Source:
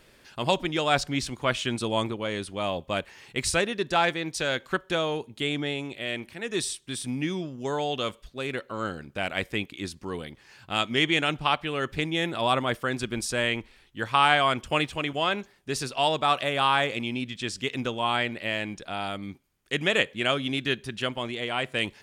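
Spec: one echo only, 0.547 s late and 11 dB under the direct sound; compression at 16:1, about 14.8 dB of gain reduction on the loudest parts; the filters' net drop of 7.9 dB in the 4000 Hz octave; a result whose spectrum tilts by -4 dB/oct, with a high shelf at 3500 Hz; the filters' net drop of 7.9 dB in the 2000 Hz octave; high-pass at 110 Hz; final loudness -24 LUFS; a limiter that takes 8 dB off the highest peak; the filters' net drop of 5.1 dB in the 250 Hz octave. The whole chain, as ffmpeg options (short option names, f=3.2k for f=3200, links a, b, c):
-af "highpass=110,equalizer=f=250:t=o:g=-6.5,equalizer=f=2k:t=o:g=-9,highshelf=f=3.5k:g=3.5,equalizer=f=4k:t=o:g=-9,acompressor=threshold=-35dB:ratio=16,alimiter=level_in=6dB:limit=-24dB:level=0:latency=1,volume=-6dB,aecho=1:1:547:0.282,volume=17.5dB"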